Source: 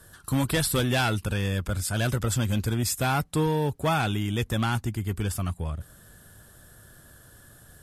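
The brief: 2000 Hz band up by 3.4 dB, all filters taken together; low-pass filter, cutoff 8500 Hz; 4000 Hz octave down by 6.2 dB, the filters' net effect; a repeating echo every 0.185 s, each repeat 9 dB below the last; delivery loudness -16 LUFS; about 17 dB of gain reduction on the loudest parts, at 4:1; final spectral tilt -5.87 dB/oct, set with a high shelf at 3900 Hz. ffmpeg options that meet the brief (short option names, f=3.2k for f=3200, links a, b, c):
-af "lowpass=8.5k,equalizer=f=2k:t=o:g=8,highshelf=f=3.9k:g=-5.5,equalizer=f=4k:t=o:g=-8,acompressor=threshold=-42dB:ratio=4,aecho=1:1:185|370|555|740:0.355|0.124|0.0435|0.0152,volume=27dB"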